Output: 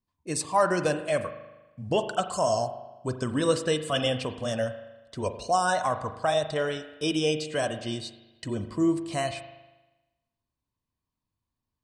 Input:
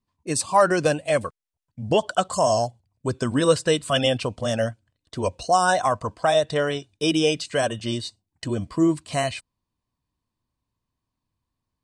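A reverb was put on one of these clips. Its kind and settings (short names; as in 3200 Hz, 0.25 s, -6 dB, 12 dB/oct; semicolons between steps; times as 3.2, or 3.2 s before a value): spring tank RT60 1.1 s, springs 39 ms, chirp 70 ms, DRR 9 dB; gain -5.5 dB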